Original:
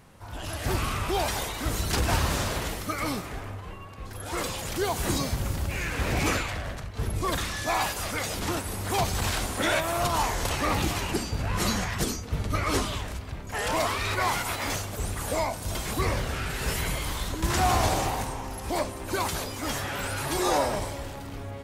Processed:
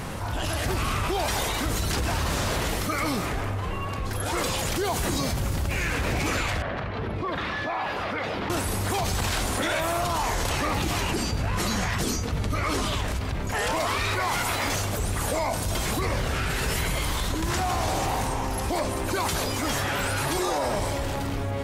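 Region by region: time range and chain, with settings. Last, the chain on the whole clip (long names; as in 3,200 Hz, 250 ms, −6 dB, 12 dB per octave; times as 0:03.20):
0:06.62–0:08.50: high-pass filter 260 Hz 6 dB per octave + high-frequency loss of the air 360 metres + downward compressor 2 to 1, threshold −41 dBFS
whole clip: high-shelf EQ 11,000 Hz −3.5 dB; brickwall limiter −19 dBFS; envelope flattener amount 70%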